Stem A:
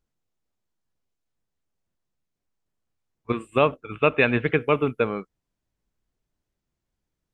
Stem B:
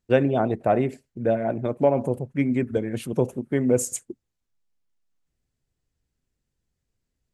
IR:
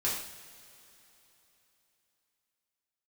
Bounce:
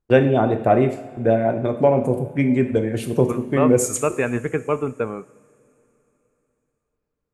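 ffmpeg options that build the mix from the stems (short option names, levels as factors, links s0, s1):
-filter_complex "[0:a]lowpass=1600,volume=0.841,asplit=2[s0][s1];[s1]volume=0.0891[s2];[1:a]agate=range=0.178:threshold=0.01:ratio=16:detection=peak,volume=1.19,asplit=2[s3][s4];[s4]volume=0.335[s5];[2:a]atrim=start_sample=2205[s6];[s2][s5]amix=inputs=2:normalize=0[s7];[s7][s6]afir=irnorm=-1:irlink=0[s8];[s0][s3][s8]amix=inputs=3:normalize=0"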